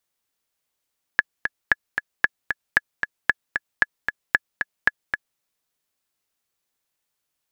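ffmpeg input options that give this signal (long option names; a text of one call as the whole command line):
ffmpeg -f lavfi -i "aevalsrc='pow(10,(-2-7*gte(mod(t,2*60/228),60/228))/20)*sin(2*PI*1700*mod(t,60/228))*exp(-6.91*mod(t,60/228)/0.03)':duration=4.21:sample_rate=44100" out.wav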